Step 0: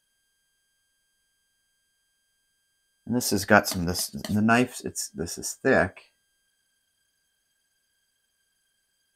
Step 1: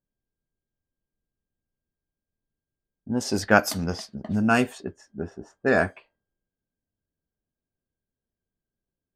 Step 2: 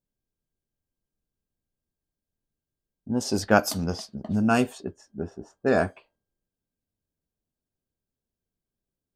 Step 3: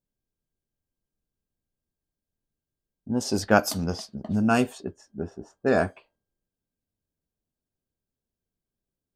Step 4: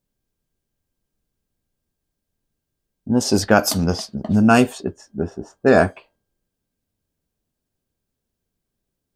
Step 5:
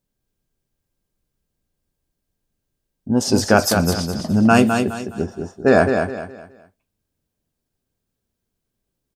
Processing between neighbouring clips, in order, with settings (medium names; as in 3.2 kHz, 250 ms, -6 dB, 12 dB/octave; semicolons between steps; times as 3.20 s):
level-controlled noise filter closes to 390 Hz, open at -19.5 dBFS
peaking EQ 1.9 kHz -7.5 dB 0.79 oct
no audible change
loudness maximiser +9.5 dB; trim -1 dB
feedback delay 208 ms, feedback 32%, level -6 dB